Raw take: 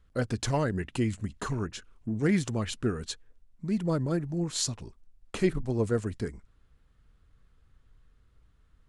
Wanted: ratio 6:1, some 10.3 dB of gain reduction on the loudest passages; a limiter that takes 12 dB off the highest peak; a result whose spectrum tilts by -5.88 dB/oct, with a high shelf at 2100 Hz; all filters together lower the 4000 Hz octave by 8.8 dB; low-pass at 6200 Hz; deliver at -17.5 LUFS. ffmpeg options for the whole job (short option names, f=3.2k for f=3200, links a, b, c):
-af "lowpass=6.2k,highshelf=f=2.1k:g=-3,equalizer=f=4k:t=o:g=-7,acompressor=threshold=-32dB:ratio=6,volume=26dB,alimiter=limit=-8dB:level=0:latency=1"